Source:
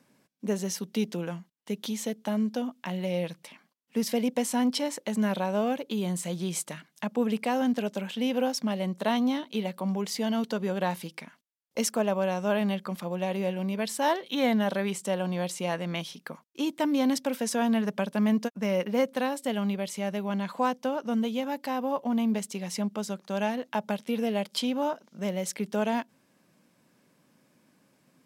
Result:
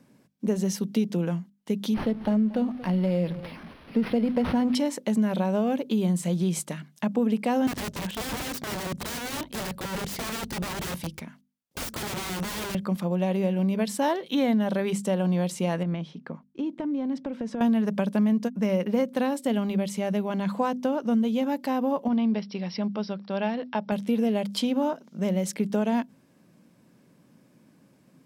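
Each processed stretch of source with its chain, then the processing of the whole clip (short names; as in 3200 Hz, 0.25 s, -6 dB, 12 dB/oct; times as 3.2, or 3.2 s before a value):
1.94–4.75 zero-crossing step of -42.5 dBFS + echo 0.232 s -18 dB + decimation joined by straight lines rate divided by 6×
7.67–12.75 wrapped overs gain 30 dB + HPF 43 Hz
15.83–17.61 tape spacing loss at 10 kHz 27 dB + compressor, threshold -33 dBFS
22.08–23.92 brick-wall FIR low-pass 5800 Hz + low shelf 410 Hz -6 dB
whole clip: low shelf 390 Hz +11.5 dB; notches 50/100/150/200/250 Hz; compressor, threshold -20 dBFS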